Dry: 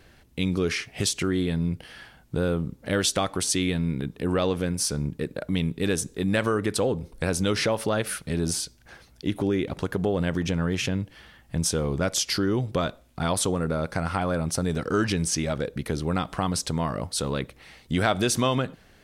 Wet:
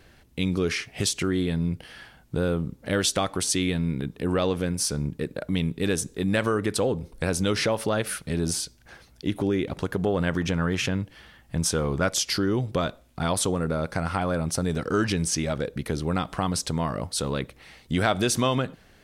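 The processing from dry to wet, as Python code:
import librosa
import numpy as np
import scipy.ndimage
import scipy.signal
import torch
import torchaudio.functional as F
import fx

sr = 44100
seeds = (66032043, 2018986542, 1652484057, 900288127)

y = fx.dynamic_eq(x, sr, hz=1300.0, q=1.1, threshold_db=-43.0, ratio=4.0, max_db=5, at=(10.06, 12.1))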